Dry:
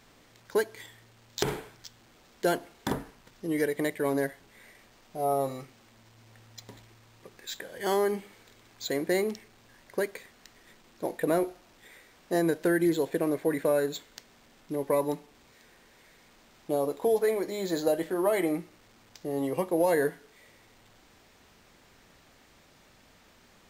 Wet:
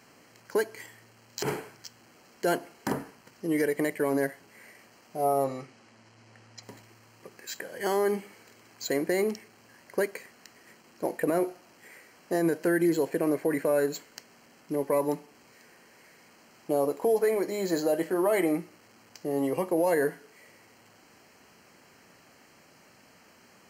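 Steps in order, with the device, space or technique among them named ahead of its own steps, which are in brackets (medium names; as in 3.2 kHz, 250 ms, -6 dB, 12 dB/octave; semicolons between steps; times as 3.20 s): PA system with an anti-feedback notch (high-pass 130 Hz 12 dB/octave; Butterworth band-stop 3.6 kHz, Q 4.1; peak limiter -19 dBFS, peak gain reduction 8.5 dB); 5.44–6.63 s: low-pass 6.8 kHz 12 dB/octave; trim +2.5 dB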